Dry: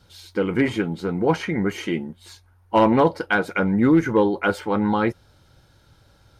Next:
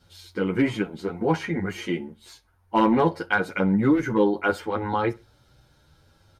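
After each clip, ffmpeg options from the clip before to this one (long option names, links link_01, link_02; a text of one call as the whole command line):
ffmpeg -i in.wav -filter_complex "[0:a]asplit=2[link_01][link_02];[link_02]adelay=63,lowpass=frequency=4100:poles=1,volume=-22dB,asplit=2[link_03][link_04];[link_04]adelay=63,lowpass=frequency=4100:poles=1,volume=0.32[link_05];[link_01][link_03][link_05]amix=inputs=3:normalize=0,asplit=2[link_06][link_07];[link_07]adelay=9.2,afreqshift=0.64[link_08];[link_06][link_08]amix=inputs=2:normalize=1" out.wav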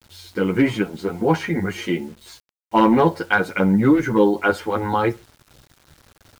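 ffmpeg -i in.wav -af "acrusher=bits=8:mix=0:aa=0.000001,volume=4.5dB" out.wav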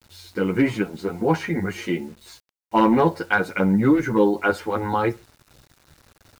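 ffmpeg -i in.wav -af "bandreject=frequency=3200:width=16,volume=-2dB" out.wav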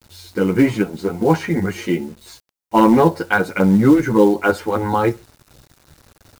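ffmpeg -i in.wav -filter_complex "[0:a]asplit=2[link_01][link_02];[link_02]acrusher=bits=4:mode=log:mix=0:aa=0.000001,volume=-6dB[link_03];[link_01][link_03]amix=inputs=2:normalize=0,equalizer=frequency=2200:width_type=o:width=2.4:gain=-3.5,volume=2dB" out.wav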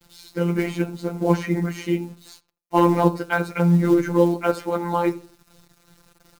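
ffmpeg -i in.wav -filter_complex "[0:a]afftfilt=real='hypot(re,im)*cos(PI*b)':imag='0':win_size=1024:overlap=0.75,asplit=2[link_01][link_02];[link_02]adelay=82,lowpass=frequency=1200:poles=1,volume=-15dB,asplit=2[link_03][link_04];[link_04]adelay=82,lowpass=frequency=1200:poles=1,volume=0.32,asplit=2[link_05][link_06];[link_06]adelay=82,lowpass=frequency=1200:poles=1,volume=0.32[link_07];[link_01][link_03][link_05][link_07]amix=inputs=4:normalize=0,volume=-1.5dB" out.wav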